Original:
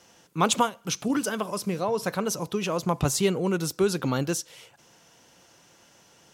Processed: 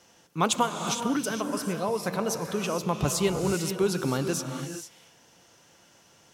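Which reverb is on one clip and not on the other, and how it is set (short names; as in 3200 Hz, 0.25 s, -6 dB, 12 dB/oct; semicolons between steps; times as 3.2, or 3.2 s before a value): non-linear reverb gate 0.49 s rising, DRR 6 dB; gain -2 dB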